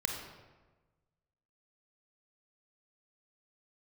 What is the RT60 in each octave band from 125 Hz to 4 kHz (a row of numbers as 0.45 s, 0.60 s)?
1.7 s, 1.4 s, 1.3 s, 1.2 s, 1.0 s, 0.80 s